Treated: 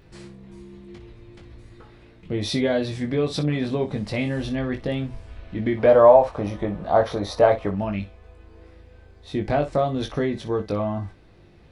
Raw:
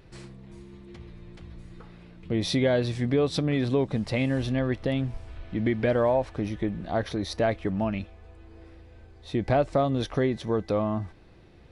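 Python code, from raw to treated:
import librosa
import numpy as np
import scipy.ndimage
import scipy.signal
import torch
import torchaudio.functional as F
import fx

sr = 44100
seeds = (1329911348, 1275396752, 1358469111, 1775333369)

y = fx.band_shelf(x, sr, hz=790.0, db=10.0, octaves=1.7, at=(5.77, 7.71))
y = fx.room_early_taps(y, sr, ms=(20, 60), db=(-4.5, -13.5))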